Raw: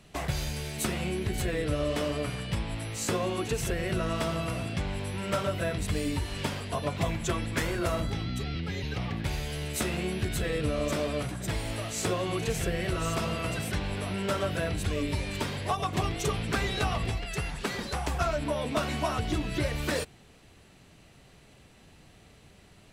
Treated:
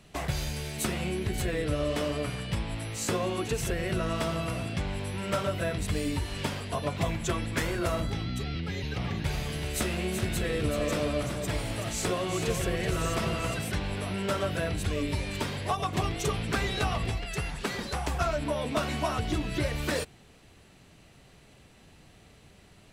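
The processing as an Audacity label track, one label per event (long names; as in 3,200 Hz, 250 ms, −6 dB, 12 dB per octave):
8.620000	13.540000	single-tap delay 378 ms −6.5 dB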